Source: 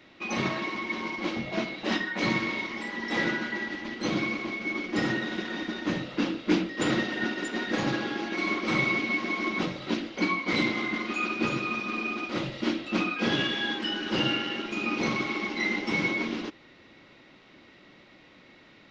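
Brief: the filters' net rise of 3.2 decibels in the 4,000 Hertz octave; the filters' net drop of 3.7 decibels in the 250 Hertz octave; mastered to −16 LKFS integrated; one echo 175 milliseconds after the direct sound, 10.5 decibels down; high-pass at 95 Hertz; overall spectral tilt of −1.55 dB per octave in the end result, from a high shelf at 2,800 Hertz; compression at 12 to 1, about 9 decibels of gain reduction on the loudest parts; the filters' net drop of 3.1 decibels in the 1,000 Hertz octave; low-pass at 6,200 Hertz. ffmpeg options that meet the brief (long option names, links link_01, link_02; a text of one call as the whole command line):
ffmpeg -i in.wav -af "highpass=95,lowpass=6200,equalizer=frequency=250:width_type=o:gain=-4.5,equalizer=frequency=1000:width_type=o:gain=-3.5,highshelf=frequency=2800:gain=-4.5,equalizer=frequency=4000:width_type=o:gain=8.5,acompressor=threshold=-31dB:ratio=12,aecho=1:1:175:0.299,volume=18dB" out.wav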